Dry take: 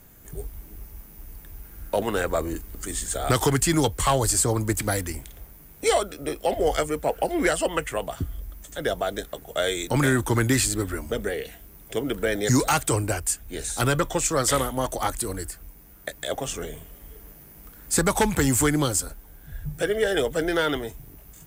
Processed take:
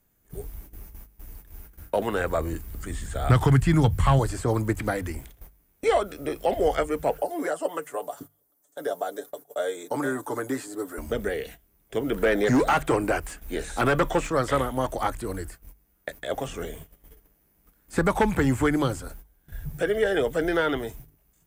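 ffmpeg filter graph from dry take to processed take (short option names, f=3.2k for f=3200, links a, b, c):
-filter_complex "[0:a]asettb=1/sr,asplit=3[a][b][c];[a]atrim=end=1.824[d];[b]atrim=start=1.82:end=4.19,asetpts=PTS-STARTPTS,afade=t=in:d=0.004:c=qsin,afade=t=out:st=2.366:d=0.004:c=qsin,bandreject=f=6.3k:w=28,asubboost=boost=10.5:cutoff=150,highpass=f=100:p=1[e];[c]atrim=start=4.186[f];[d][e]acrossfade=d=0.004:c1=hsin:c2=qsin[g];[g][f]acrossfade=d=0.004:c1=qsin:c2=hsin,asettb=1/sr,asplit=3[h][i][j];[h]atrim=end=7.184[k];[i]atrim=start=7.18:end=10.98,asetpts=PTS-STARTPTS,afade=t=in:d=0.004:c=qsin,afade=t=out:st=3.796:d=0.004:c=qsin,highpass=420,equalizer=f=2.5k:w=0.82:g=-15,aecho=1:1:6.9:0.61,atrim=end_sample=167580[l];[j]atrim=start=10.976[m];[k][l]acrossfade=d=0.004:c1=hsin:c2=qsin[n];[n][m]acrossfade=d=0.004:c1=qsin:c2=hsin,asettb=1/sr,asplit=3[o][p][q];[o]atrim=end=12.124[r];[p]atrim=start=12.12:end=14.3,asetpts=PTS-STARTPTS,afade=t=in:d=0.004:c=qsin,afade=t=out:st=2.176:d=0.004:c=qsin,equalizer=f=100:t=o:w=0.7:g=-14.5,acontrast=21,asoftclip=type=hard:threshold=-15.5dB[s];[q]atrim=start=14.296[t];[r][s]acrossfade=d=0.004:c1=hsin:c2=qsin[u];[u][t]acrossfade=d=0.004:c1=qsin:c2=hsin,acrossover=split=2700[v][w];[w]acompressor=threshold=-43dB:ratio=4:attack=1:release=60[x];[v][x]amix=inputs=2:normalize=0,agate=range=-17dB:threshold=-41dB:ratio=16:detection=peak,bandreject=f=50:t=h:w=6,bandreject=f=100:t=h:w=6,bandreject=f=150:t=h:w=6"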